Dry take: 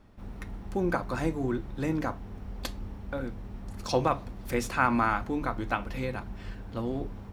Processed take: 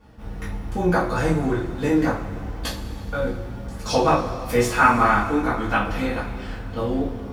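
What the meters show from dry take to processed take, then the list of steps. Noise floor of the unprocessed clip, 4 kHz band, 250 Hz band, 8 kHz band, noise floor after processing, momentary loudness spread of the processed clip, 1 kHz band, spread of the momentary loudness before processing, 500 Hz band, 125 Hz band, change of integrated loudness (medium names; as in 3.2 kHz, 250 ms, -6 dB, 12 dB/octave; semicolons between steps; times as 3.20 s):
-44 dBFS, +9.5 dB, +8.0 dB, +9.0 dB, -35 dBFS, 15 LU, +9.5 dB, 16 LU, +9.0 dB, +8.0 dB, +8.5 dB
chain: chorus 1.1 Hz, delay 16 ms, depth 3.8 ms; two-slope reverb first 0.29 s, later 2.6 s, from -18 dB, DRR -7 dB; trim +4.5 dB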